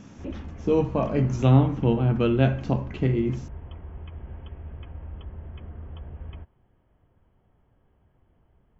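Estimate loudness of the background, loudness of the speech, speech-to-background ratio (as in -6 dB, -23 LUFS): -41.0 LUFS, -23.5 LUFS, 17.5 dB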